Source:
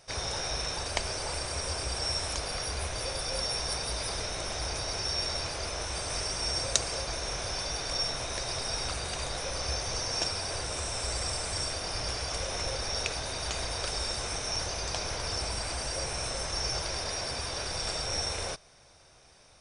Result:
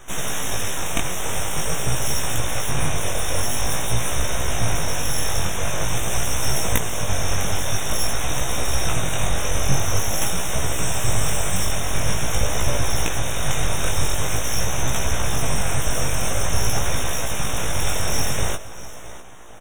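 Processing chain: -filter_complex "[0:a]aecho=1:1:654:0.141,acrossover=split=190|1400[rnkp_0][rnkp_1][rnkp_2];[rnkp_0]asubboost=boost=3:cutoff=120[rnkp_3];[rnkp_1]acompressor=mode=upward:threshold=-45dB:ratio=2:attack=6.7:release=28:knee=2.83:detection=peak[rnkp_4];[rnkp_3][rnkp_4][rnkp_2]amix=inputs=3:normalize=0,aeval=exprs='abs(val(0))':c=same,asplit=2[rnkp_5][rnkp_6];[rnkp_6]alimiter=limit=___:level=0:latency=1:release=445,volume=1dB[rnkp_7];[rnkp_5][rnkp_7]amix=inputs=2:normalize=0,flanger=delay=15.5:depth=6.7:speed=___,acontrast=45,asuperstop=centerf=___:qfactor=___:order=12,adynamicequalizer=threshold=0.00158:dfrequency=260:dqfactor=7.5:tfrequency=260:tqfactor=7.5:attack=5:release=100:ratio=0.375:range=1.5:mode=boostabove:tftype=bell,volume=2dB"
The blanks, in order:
-14dB, 0.47, 4600, 2.5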